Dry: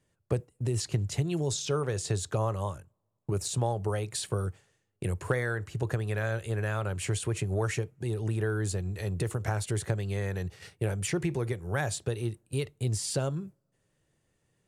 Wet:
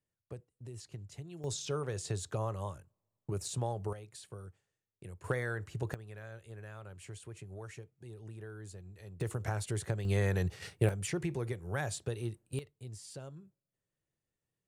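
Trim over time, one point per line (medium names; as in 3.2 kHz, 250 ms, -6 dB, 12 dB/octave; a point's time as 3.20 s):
-17 dB
from 1.44 s -6.5 dB
from 3.93 s -16.5 dB
from 5.24 s -5.5 dB
from 5.94 s -17 dB
from 9.21 s -5 dB
from 10.05 s +2 dB
from 10.89 s -5.5 dB
from 12.59 s -16.5 dB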